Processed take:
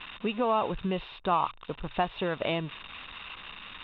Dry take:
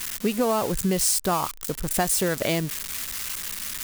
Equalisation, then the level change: rippled Chebyshev low-pass 3.8 kHz, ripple 9 dB; hum notches 60/120 Hz; +1.5 dB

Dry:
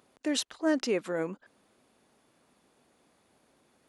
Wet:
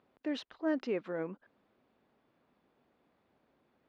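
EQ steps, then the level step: distance through air 290 m; -4.5 dB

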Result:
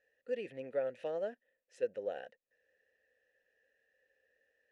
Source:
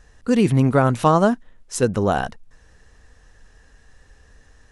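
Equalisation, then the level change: vowel filter e; bass shelf 270 Hz -7.5 dB; -8.0 dB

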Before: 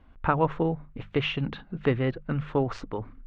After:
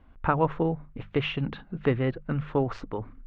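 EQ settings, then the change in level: treble shelf 5.4 kHz -9.5 dB; 0.0 dB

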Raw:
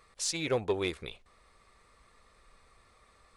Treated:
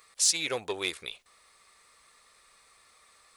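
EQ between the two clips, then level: tilt EQ +3.5 dB/octave; 0.0 dB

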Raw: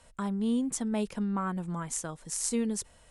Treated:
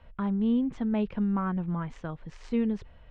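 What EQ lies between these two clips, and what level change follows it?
low-pass 3.1 kHz 24 dB/octave; bass shelf 150 Hz +10.5 dB; 0.0 dB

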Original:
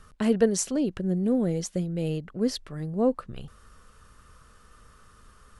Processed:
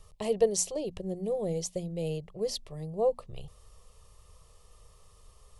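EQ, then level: hum notches 60/120/180/240 Hz; static phaser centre 620 Hz, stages 4; 0.0 dB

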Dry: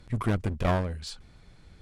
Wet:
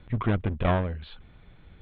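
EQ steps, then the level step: steep low-pass 3.7 kHz 72 dB/octave; +1.5 dB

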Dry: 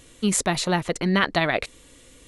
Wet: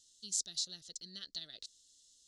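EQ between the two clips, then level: inverse Chebyshev high-pass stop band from 2.5 kHz, stop band 40 dB; distance through air 160 m; +5.0 dB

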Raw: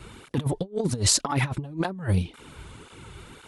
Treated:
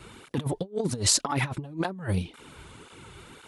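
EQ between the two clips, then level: bass shelf 100 Hz -8 dB; -1.0 dB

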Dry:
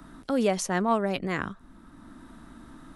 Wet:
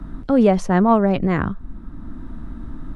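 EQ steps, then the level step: RIAA curve playback; dynamic bell 900 Hz, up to +4 dB, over -33 dBFS, Q 0.77; +4.0 dB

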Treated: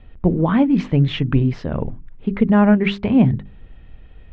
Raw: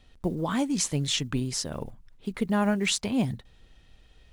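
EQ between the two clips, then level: low-pass 2.7 kHz 24 dB/octave; bass shelf 380 Hz +8.5 dB; hum notches 50/100/150/200/250/300/350/400 Hz; +7.0 dB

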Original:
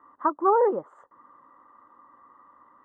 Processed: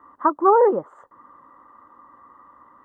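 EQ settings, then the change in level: bass shelf 110 Hz +8 dB; +5.0 dB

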